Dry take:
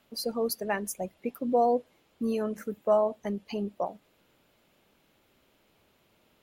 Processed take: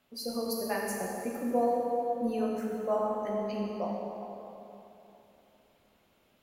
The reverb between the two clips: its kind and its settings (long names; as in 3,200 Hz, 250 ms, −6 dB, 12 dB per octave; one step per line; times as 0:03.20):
dense smooth reverb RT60 3.2 s, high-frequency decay 0.65×, DRR −3 dB
level −6 dB